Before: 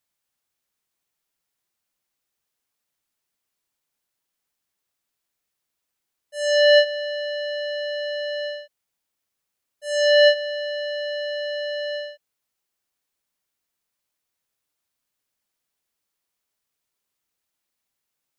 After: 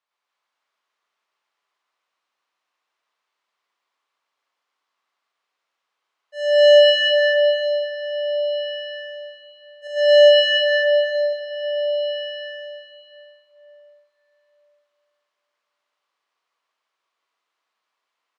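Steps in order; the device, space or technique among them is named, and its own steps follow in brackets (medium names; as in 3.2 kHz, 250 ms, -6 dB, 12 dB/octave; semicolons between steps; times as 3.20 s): 9.87–11.04 s: gate -24 dBFS, range -6 dB; station announcement (band-pass 490–3600 Hz; peaking EQ 1.1 kHz +8 dB 0.47 oct; loudspeakers at several distances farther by 38 m 0 dB, 99 m 0 dB; reverberation RT60 3.5 s, pre-delay 31 ms, DRR 0 dB)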